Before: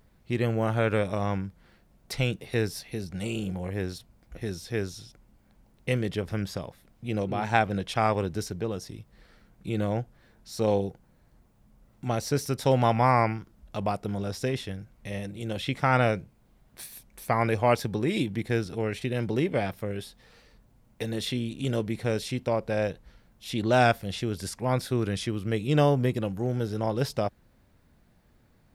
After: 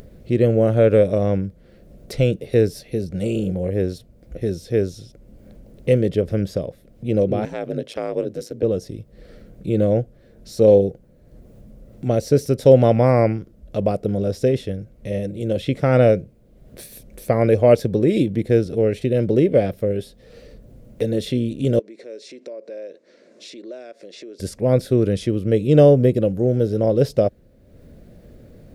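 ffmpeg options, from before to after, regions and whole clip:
ffmpeg -i in.wav -filter_complex "[0:a]asettb=1/sr,asplit=3[link_01][link_02][link_03];[link_01]atrim=end=7.454[link_04];[link_02]atrim=start=7.45:end=8.63,asetpts=PTS-STARTPTS,afade=type=in:duration=0.004:curve=qsin,afade=type=out:start_time=1.176:duration=0.004:curve=qsin,highpass=frequency=190:width=0.5412,highpass=frequency=190:width=1.3066,acompressor=threshold=-27dB:ratio=2.5:attack=3.2:release=140:knee=1:detection=peak,aeval=exprs='val(0)*sin(2*PI*55*n/s)':channel_layout=same[link_05];[link_03]atrim=start=8.626[link_06];[link_04][link_05]acrossfade=duration=0.004:curve1=hsin:curve2=qsin[link_07];[link_07][link_06]acrossfade=duration=0.004:curve1=qsin:curve2=hsin,asettb=1/sr,asplit=3[link_08][link_09][link_10];[link_08]atrim=end=21.794[link_11];[link_09]atrim=start=21.79:end=24.4,asetpts=PTS-STARTPTS,afade=type=in:duration=0.004:curve=qsin,afade=type=out:start_time=2.606:duration=0.004:curve=qsin,acompressor=threshold=-36dB:ratio=12:attack=3.2:release=140:knee=1:detection=peak,highpass=frequency=340:width=0.5412,highpass=frequency=340:width=1.3066,equalizer=frequency=480:width_type=q:width=4:gain=-6,equalizer=frequency=790:width_type=q:width=4:gain=-10,equalizer=frequency=1300:width_type=q:width=4:gain=-5,equalizer=frequency=3100:width_type=q:width=4:gain=-8,lowpass=frequency=7300:width=0.5412,lowpass=frequency=7300:width=1.3066[link_12];[link_10]atrim=start=24.396[link_13];[link_11][link_12]acrossfade=duration=0.004:curve1=hsin:curve2=qsin[link_14];[link_14][link_13]acrossfade=duration=0.004:curve1=qsin:curve2=hsin,lowshelf=frequency=700:width_type=q:width=3:gain=8,acompressor=mode=upward:threshold=-34dB:ratio=2.5" out.wav

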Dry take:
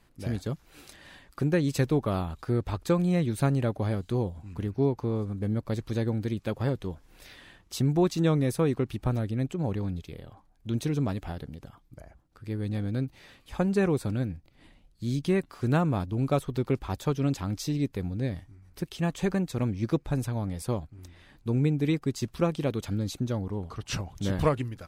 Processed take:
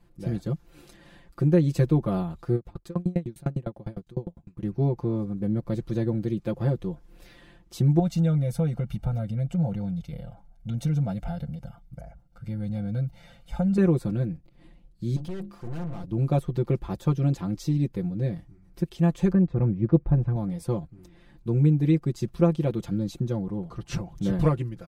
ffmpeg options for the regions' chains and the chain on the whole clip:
ffmpeg -i in.wav -filter_complex "[0:a]asettb=1/sr,asplit=3[link_01][link_02][link_03];[link_01]atrim=end=2.554[link_04];[link_02]atrim=start=2.55:end=4.63,asetpts=PTS-STARTPTS,afade=type=in:duration=0.004:curve=qsin,afade=type=out:start_time=2.076:duration=0.004:curve=qsin,asoftclip=type=hard:threshold=-17dB,aeval=exprs='val(0)*pow(10,-35*if(lt(mod(9.9*n/s,1),2*abs(9.9)/1000),1-mod(9.9*n/s,1)/(2*abs(9.9)/1000),(mod(9.9*n/s,1)-2*abs(9.9)/1000)/(1-2*abs(9.9)/1000))/20)':channel_layout=same[link_05];[link_03]atrim=start=4.626[link_06];[link_04][link_05]acrossfade=duration=0.004:curve1=hsin:curve2=qsin[link_07];[link_07][link_06]acrossfade=duration=0.004:curve1=qsin:curve2=hsin,asettb=1/sr,asplit=3[link_08][link_09][link_10];[link_08]atrim=end=7.994[link_11];[link_09]atrim=start=7.99:end=13.78,asetpts=PTS-STARTPTS,afade=type=in:duration=0.004:curve=qsin,afade=type=out:start_time=5.786:duration=0.004:curve=qsin,aecho=1:1:1.4:0.89,atrim=end_sample=255339,acompressor=threshold=-27dB:ratio=3:attack=3.2:release=140:knee=1:detection=peak[link_12];[link_10]atrim=start=13.776[link_13];[link_11][link_12]acrossfade=duration=0.004:curve1=hsin:curve2=qsin[link_14];[link_14][link_13]acrossfade=duration=0.004:curve1=qsin:curve2=hsin,asettb=1/sr,asplit=3[link_15][link_16][link_17];[link_15]atrim=end=15.164[link_18];[link_16]atrim=start=15.16:end=16.04,asetpts=PTS-STARTPTS,afade=type=in:duration=0.004:curve=qsin,afade=type=out:start_time=0.876:duration=0.004:curve=qsin,bandreject=frequency=50:width_type=h:width=6,bandreject=frequency=100:width_type=h:width=6,bandreject=frequency=150:width_type=h:width=6,bandreject=frequency=200:width_type=h:width=6,bandreject=frequency=250:width_type=h:width=6,bandreject=frequency=300:width_type=h:width=6,bandreject=frequency=350:width_type=h:width=6,aeval=exprs='(tanh(70.8*val(0)+0.45)-tanh(0.45))/70.8':channel_layout=same[link_19];[link_17]atrim=start=16.036[link_20];[link_18][link_19]acrossfade=duration=0.004:curve1=hsin:curve2=qsin[link_21];[link_21][link_20]acrossfade=duration=0.004:curve1=qsin:curve2=hsin,asettb=1/sr,asplit=3[link_22][link_23][link_24];[link_22]atrim=end=19.324[link_25];[link_23]atrim=start=19.32:end=20.36,asetpts=PTS-STARTPTS,afade=type=in:duration=0.004:curve=qsin,afade=type=out:start_time=1.036:duration=0.004:curve=qsin,deesser=0.9,lowpass=1800,equalizer=frequency=65:width=1:gain=10[link_26];[link_24]atrim=start=20.356[link_27];[link_25][link_26]acrossfade=duration=0.004:curve1=hsin:curve2=qsin[link_28];[link_28][link_27]acrossfade=duration=0.004:curve1=qsin:curve2=hsin,tiltshelf=frequency=730:gain=5.5,aecho=1:1:5.8:0.85,volume=-3dB" out.wav

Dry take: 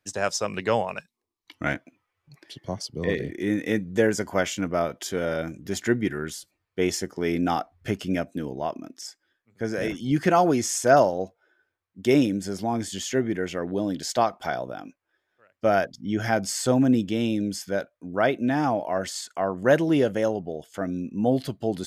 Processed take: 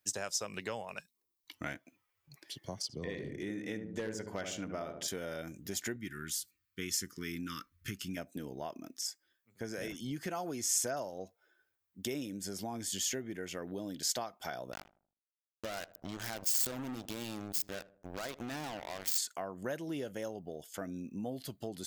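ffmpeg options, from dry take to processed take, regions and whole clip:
ffmpeg -i in.wav -filter_complex "[0:a]asettb=1/sr,asplit=3[link_01][link_02][link_03];[link_01]atrim=end=2.824[link_04];[link_02]atrim=start=2.82:end=5.08,asetpts=PTS-STARTPTS,afade=type=in:duration=0.004:curve=qsin,afade=type=out:start_time=2.256:duration=0.004:curve=qsin,aeval=exprs='0.282*(abs(mod(val(0)/0.282+3,4)-2)-1)':channel_layout=same,adynamicsmooth=sensitivity=0.5:basefreq=7600,asplit=2[link_05][link_06];[link_06]adelay=73,lowpass=frequency=850:poles=1,volume=-5dB,asplit=2[link_07][link_08];[link_08]adelay=73,lowpass=frequency=850:poles=1,volume=0.5,asplit=2[link_09][link_10];[link_10]adelay=73,lowpass=frequency=850:poles=1,volume=0.5,asplit=2[link_11][link_12];[link_12]adelay=73,lowpass=frequency=850:poles=1,volume=0.5,asplit=2[link_13][link_14];[link_14]adelay=73,lowpass=frequency=850:poles=1,volume=0.5,asplit=2[link_15][link_16];[link_16]adelay=73,lowpass=frequency=850:poles=1,volume=0.5[link_17];[link_05][link_07][link_09][link_11][link_13][link_15][link_17]amix=inputs=7:normalize=0,atrim=end_sample=99666[link_18];[link_03]atrim=start=5.076[link_19];[link_04][link_18]acrossfade=duration=0.004:curve1=hsin:curve2=qsin[link_20];[link_20][link_19]acrossfade=duration=0.004:curve1=qsin:curve2=hsin,asettb=1/sr,asplit=3[link_21][link_22][link_23];[link_21]atrim=end=5.964[link_24];[link_22]atrim=start=5.96:end=8.17,asetpts=PTS-STARTPTS,afade=type=in:duration=0.004:curve=qsin,afade=type=out:start_time=2.206:duration=0.004:curve=qsin,asuperstop=centerf=730:order=8:qfactor=1.2,equalizer=frequency=450:width_type=o:width=0.68:gain=-12.5[link_25];[link_23]atrim=start=8.166[link_26];[link_24][link_25]acrossfade=duration=0.004:curve1=hsin:curve2=qsin[link_27];[link_27][link_26]acrossfade=duration=0.004:curve1=qsin:curve2=hsin,asettb=1/sr,asplit=3[link_28][link_29][link_30];[link_28]atrim=end=14.724[link_31];[link_29]atrim=start=14.72:end=19.18,asetpts=PTS-STARTPTS,afade=type=in:duration=0.004:curve=qsin,afade=type=out:start_time=4.456:duration=0.004:curve=qsin,acompressor=threshold=-30dB:ratio=3:attack=3.2:release=140:knee=1:detection=peak,acrusher=bits=4:mix=0:aa=0.5,asplit=2[link_32][link_33];[link_33]adelay=78,lowpass=frequency=940:poles=1,volume=-18dB,asplit=2[link_34][link_35];[link_35]adelay=78,lowpass=frequency=940:poles=1,volume=0.49,asplit=2[link_36][link_37];[link_37]adelay=78,lowpass=frequency=940:poles=1,volume=0.49,asplit=2[link_38][link_39];[link_39]adelay=78,lowpass=frequency=940:poles=1,volume=0.49[link_40];[link_32][link_34][link_36][link_38][link_40]amix=inputs=5:normalize=0,atrim=end_sample=196686[link_41];[link_30]atrim=start=19.176[link_42];[link_31][link_41]acrossfade=duration=0.004:curve1=hsin:curve2=qsin[link_43];[link_43][link_42]acrossfade=duration=0.004:curve1=qsin:curve2=hsin,equalizer=frequency=11000:width=0.8:gain=-4,acompressor=threshold=-30dB:ratio=4,aemphasis=mode=production:type=75fm,volume=-7dB" out.wav

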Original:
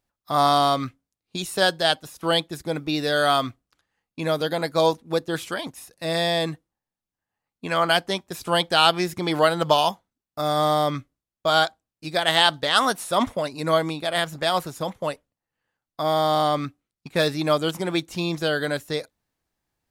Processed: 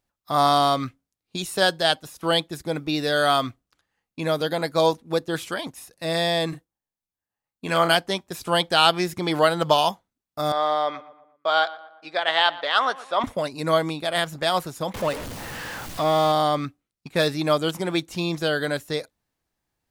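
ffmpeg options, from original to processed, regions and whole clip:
ffmpeg -i in.wav -filter_complex "[0:a]asettb=1/sr,asplit=3[link_01][link_02][link_03];[link_01]atrim=end=6.494[link_04];[link_02]atrim=start=6.49:end=7.95,asetpts=PTS-STARTPTS,afade=type=in:duration=0.004:curve=qsin,afade=type=out:start_time=1.456:duration=0.004:curve=qsin,agate=range=-7dB:threshold=-55dB:ratio=16:release=100:detection=peak,highshelf=frequency=6800:gain=6,asplit=2[link_05][link_06];[link_06]adelay=36,volume=-6.5dB[link_07];[link_05][link_07]amix=inputs=2:normalize=0,atrim=end_sample=64386[link_08];[link_03]atrim=start=7.946[link_09];[link_04][link_08]acrossfade=duration=0.004:curve1=hsin:curve2=qsin[link_10];[link_10][link_09]acrossfade=duration=0.004:curve1=qsin:curve2=hsin,asettb=1/sr,asplit=3[link_11][link_12][link_13];[link_11]atrim=end=10.524[link_14];[link_12]atrim=start=10.52:end=13.24,asetpts=PTS-STARTPTS,afade=type=in:duration=0.004:curve=qsin,afade=type=out:start_time=2.716:duration=0.004:curve=qsin,highpass=520,lowpass=3200,asplit=2[link_15][link_16];[link_16]adelay=118,lowpass=frequency=2300:poles=1,volume=-17dB,asplit=2[link_17][link_18];[link_18]adelay=118,lowpass=frequency=2300:poles=1,volume=0.49,asplit=2[link_19][link_20];[link_20]adelay=118,lowpass=frequency=2300:poles=1,volume=0.49,asplit=2[link_21][link_22];[link_22]adelay=118,lowpass=frequency=2300:poles=1,volume=0.49[link_23];[link_15][link_17][link_19][link_21][link_23]amix=inputs=5:normalize=0,atrim=end_sample=119952[link_24];[link_13]atrim=start=13.236[link_25];[link_14][link_24]acrossfade=duration=0.004:curve1=hsin:curve2=qsin[link_26];[link_26][link_25]acrossfade=duration=0.004:curve1=qsin:curve2=hsin,asettb=1/sr,asplit=3[link_27][link_28][link_29];[link_27]atrim=end=14.944[link_30];[link_28]atrim=start=14.94:end=16.32,asetpts=PTS-STARTPTS,afade=type=in:duration=0.004:curve=qsin,afade=type=out:start_time=1.376:duration=0.004:curve=qsin,aeval=exprs='val(0)+0.5*0.0473*sgn(val(0))':channel_layout=same,highshelf=frequency=6200:gain=-5.5[link_31];[link_29]atrim=start=16.316[link_32];[link_30][link_31]acrossfade=duration=0.004:curve1=hsin:curve2=qsin[link_33];[link_33][link_32]acrossfade=duration=0.004:curve1=qsin:curve2=hsin" out.wav

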